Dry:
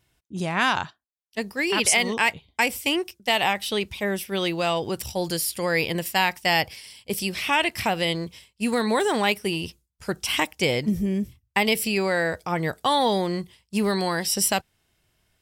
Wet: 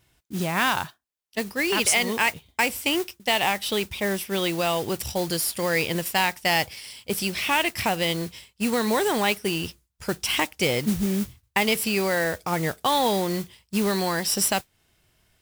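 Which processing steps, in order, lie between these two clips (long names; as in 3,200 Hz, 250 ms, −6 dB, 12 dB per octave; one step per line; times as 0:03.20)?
in parallel at +1 dB: downward compressor, threshold −31 dBFS, peak gain reduction 14.5 dB
on the sum: noise that follows the level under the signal 13 dB
level −3 dB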